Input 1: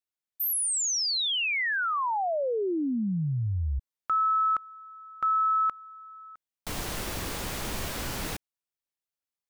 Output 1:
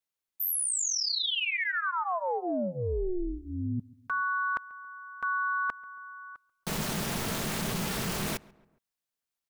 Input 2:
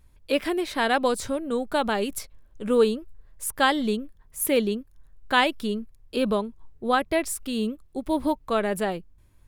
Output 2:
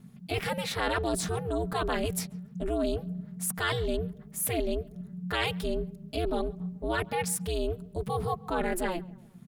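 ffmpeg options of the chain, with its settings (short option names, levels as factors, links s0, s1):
-filter_complex "[0:a]aecho=1:1:4.4:0.94,areverse,acompressor=threshold=0.0316:ratio=6:attack=13:release=31:knee=6:detection=peak,areverse,aeval=exprs='val(0)*sin(2*PI*180*n/s)':c=same,asplit=2[s0][s1];[s1]adelay=138,lowpass=f=2000:p=1,volume=0.075,asplit=2[s2][s3];[s3]adelay=138,lowpass=f=2000:p=1,volume=0.49,asplit=2[s4][s5];[s5]adelay=138,lowpass=f=2000:p=1,volume=0.49[s6];[s0][s2][s4][s6]amix=inputs=4:normalize=0,volume=1.41"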